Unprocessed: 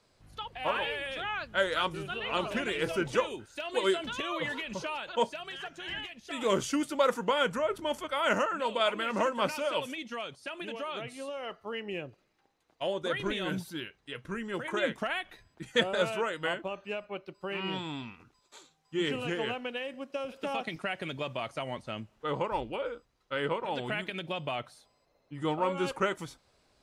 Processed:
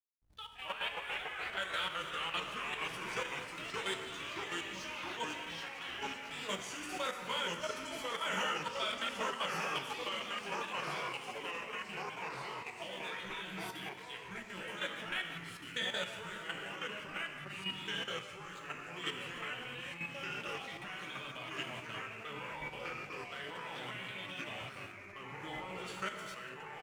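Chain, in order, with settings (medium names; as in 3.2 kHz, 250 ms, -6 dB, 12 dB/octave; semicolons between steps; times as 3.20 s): amplifier tone stack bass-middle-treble 5-5-5; gated-style reverb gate 470 ms falling, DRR 1 dB; hysteresis with a dead band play -56.5 dBFS; doubling 16 ms -4.5 dB; level held to a coarse grid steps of 10 dB; ever faster or slower copies 186 ms, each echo -2 st, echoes 3; trim +4 dB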